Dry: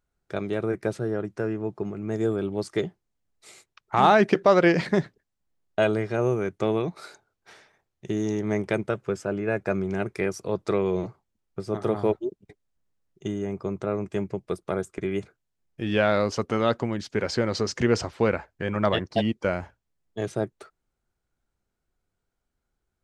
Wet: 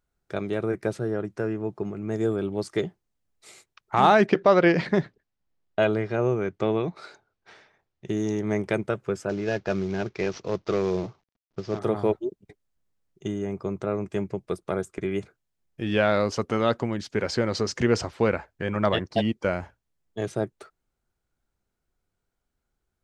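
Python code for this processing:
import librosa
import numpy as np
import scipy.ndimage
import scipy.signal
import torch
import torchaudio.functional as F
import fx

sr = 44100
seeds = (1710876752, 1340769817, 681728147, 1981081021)

y = fx.lowpass(x, sr, hz=5000.0, slope=12, at=(4.26, 8.09))
y = fx.cvsd(y, sr, bps=32000, at=(9.29, 11.79))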